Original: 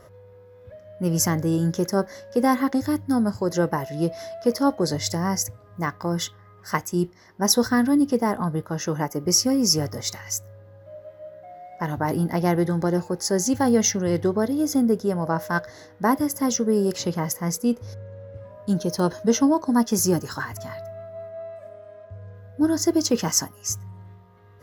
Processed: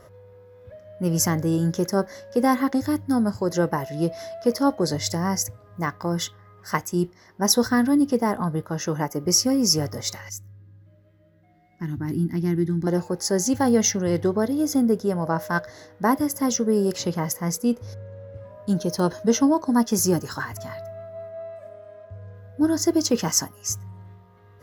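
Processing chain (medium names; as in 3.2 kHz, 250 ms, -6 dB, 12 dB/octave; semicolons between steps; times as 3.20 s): 10.29–12.87 s: FFT filter 340 Hz 0 dB, 530 Hz -25 dB, 1.9 kHz -8 dB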